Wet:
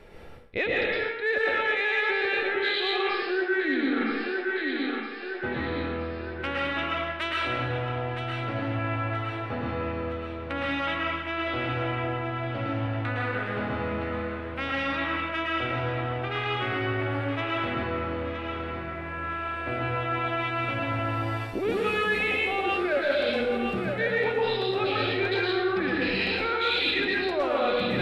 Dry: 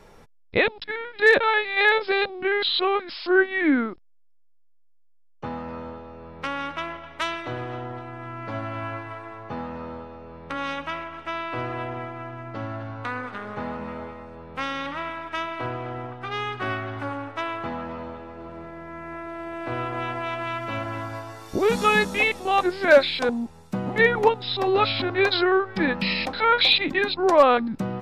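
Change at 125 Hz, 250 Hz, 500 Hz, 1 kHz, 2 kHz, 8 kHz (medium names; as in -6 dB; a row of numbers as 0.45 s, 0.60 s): +3.5 dB, -1.5 dB, -3.5 dB, -4.0 dB, -2.0 dB, under -10 dB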